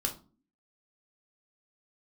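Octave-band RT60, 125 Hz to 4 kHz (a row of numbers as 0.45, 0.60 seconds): 0.50, 0.70, 0.40, 0.35, 0.25, 0.25 seconds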